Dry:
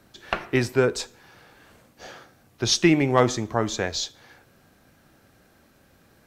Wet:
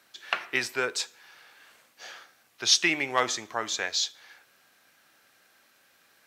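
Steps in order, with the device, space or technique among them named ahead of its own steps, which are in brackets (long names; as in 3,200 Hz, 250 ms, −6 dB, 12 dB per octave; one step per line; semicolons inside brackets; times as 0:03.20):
filter by subtraction (in parallel: low-pass filter 2,300 Hz 12 dB per octave + polarity inversion)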